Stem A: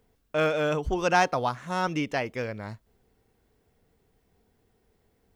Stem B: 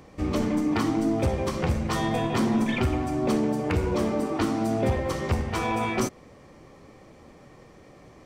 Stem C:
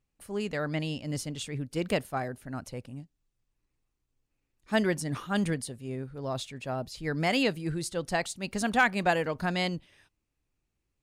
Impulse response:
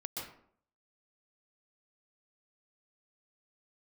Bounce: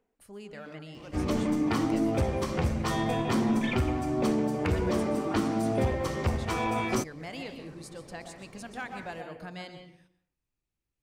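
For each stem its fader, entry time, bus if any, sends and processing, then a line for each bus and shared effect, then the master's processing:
-5.0 dB, 0.00 s, bus A, no send, Wiener smoothing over 9 samples; steep high-pass 210 Hz; attack slew limiter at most 180 dB/s; auto duck -9 dB, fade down 0.30 s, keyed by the third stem
-2.5 dB, 0.95 s, no bus, no send, dry
-8.5 dB, 0.00 s, bus A, send -9.5 dB, de-hum 74.13 Hz, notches 15
bus A: 0.0 dB, compressor 2:1, threshold -49 dBFS, peak gain reduction 12.5 dB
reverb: on, RT60 0.60 s, pre-delay 0.117 s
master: dry

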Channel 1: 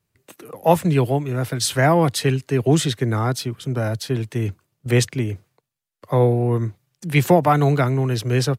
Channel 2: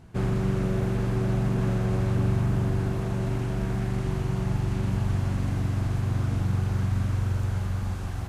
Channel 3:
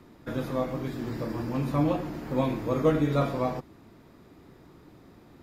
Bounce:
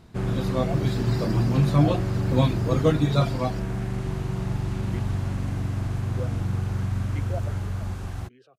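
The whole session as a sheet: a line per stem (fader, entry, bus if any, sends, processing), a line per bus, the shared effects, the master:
-10.0 dB, 0.00 s, no send, level quantiser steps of 15 dB; vowel sweep a-i 2.7 Hz
-1.0 dB, 0.00 s, no send, dry
-7.0 dB, 0.00 s, no send, reverb removal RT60 1.7 s; graphic EQ 125/4000/8000 Hz +10/+10/+6 dB; AGC gain up to 13.5 dB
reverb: off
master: dry

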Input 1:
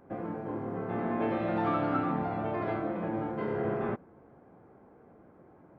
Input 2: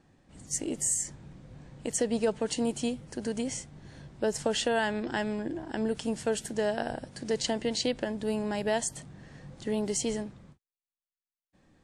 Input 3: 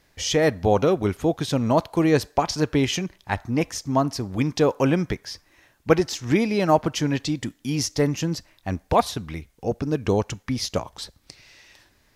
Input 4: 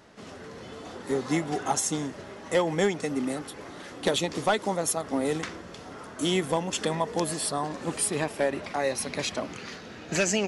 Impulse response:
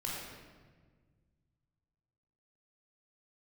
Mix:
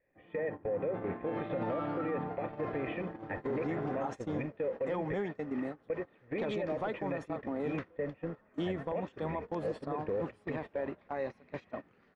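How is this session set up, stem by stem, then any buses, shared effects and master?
-5.5 dB, 0.05 s, no bus, no send, comb 6.6 ms, depth 36%
-8.5 dB, 0.05 s, bus A, no send, dry
+1.0 dB, 0.00 s, bus A, no send, power-law curve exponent 0.7
-4.5 dB, 2.35 s, no bus, no send, LPF 1700 Hz 12 dB/oct
bus A: 0.0 dB, vocal tract filter e; compressor 3:1, threshold -29 dBFS, peak gain reduction 10 dB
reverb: off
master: gate -34 dBFS, range -20 dB; limiter -26.5 dBFS, peak gain reduction 11 dB

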